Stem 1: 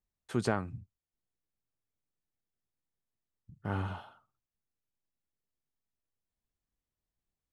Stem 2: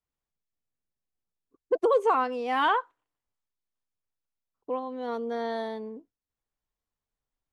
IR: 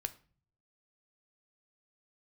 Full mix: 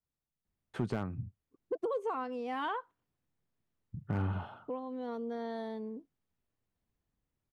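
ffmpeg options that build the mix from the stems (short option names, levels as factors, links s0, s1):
-filter_complex "[0:a]bass=f=250:g=-3,treble=f=4000:g=-12,dynaudnorm=f=260:g=9:m=1.58,adelay=450,volume=1.19[s0];[1:a]volume=0.447[s1];[s0][s1]amix=inputs=2:normalize=0,equalizer=f=130:w=0.44:g=9.5,asoftclip=type=hard:threshold=0.158,acompressor=threshold=0.0141:ratio=2"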